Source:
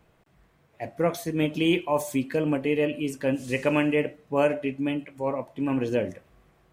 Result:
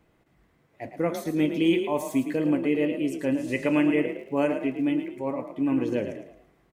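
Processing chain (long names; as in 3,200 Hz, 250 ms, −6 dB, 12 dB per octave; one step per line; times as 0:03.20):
hollow resonant body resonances 290/2,000 Hz, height 7 dB, ringing for 25 ms
0:04.07–0:05.09: surface crackle 120 per second −46 dBFS
echo with shifted repeats 110 ms, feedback 35%, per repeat +34 Hz, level −9 dB
level −4 dB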